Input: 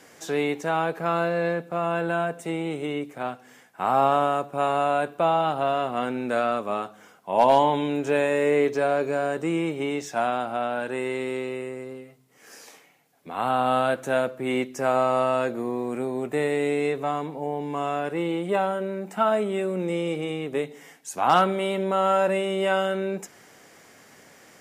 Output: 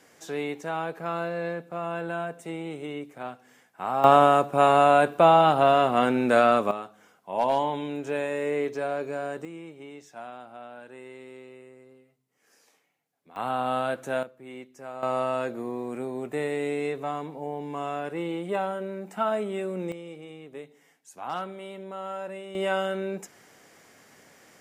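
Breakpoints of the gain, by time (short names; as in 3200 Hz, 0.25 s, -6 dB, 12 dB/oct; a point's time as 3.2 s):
-6 dB
from 4.04 s +5 dB
from 6.71 s -6.5 dB
from 9.45 s -16 dB
from 13.36 s -5 dB
from 14.23 s -16.5 dB
from 15.03 s -4.5 dB
from 19.92 s -14 dB
from 22.55 s -3.5 dB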